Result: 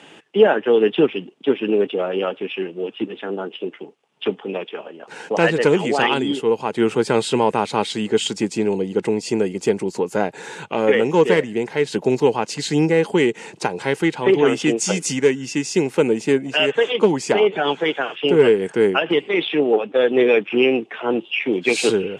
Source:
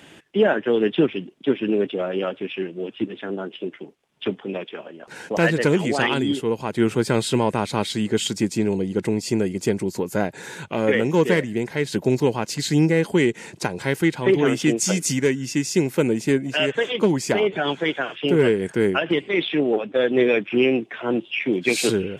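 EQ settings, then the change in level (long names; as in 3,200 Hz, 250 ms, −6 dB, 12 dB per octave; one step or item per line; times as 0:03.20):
loudspeaker in its box 150–9,900 Hz, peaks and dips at 450 Hz +6 dB, 830 Hz +7 dB, 1,200 Hz +4 dB, 2,800 Hz +5 dB
0.0 dB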